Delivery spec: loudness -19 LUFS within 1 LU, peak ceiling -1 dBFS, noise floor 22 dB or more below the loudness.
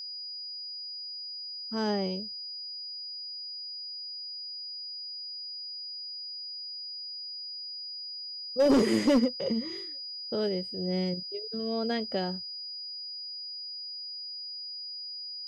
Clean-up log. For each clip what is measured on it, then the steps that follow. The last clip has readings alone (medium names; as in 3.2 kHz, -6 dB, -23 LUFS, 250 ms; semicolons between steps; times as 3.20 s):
clipped samples 0.3%; clipping level -17.5 dBFS; steady tone 4.9 kHz; tone level -37 dBFS; loudness -32.5 LUFS; peak level -17.5 dBFS; loudness target -19.0 LUFS
-> clip repair -17.5 dBFS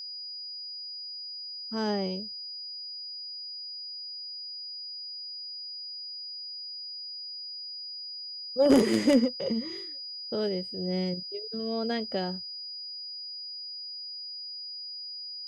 clipped samples 0.0%; steady tone 4.9 kHz; tone level -37 dBFS
-> band-stop 4.9 kHz, Q 30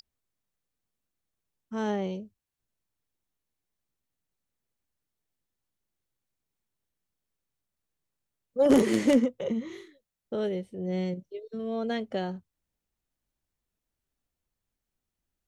steady tone not found; loudness -28.5 LUFS; peak level -9.0 dBFS; loudness target -19.0 LUFS
-> trim +9.5 dB; peak limiter -1 dBFS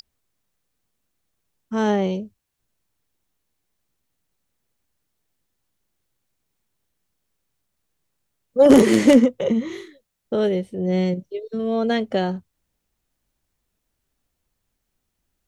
loudness -19.5 LUFS; peak level -1.0 dBFS; noise floor -77 dBFS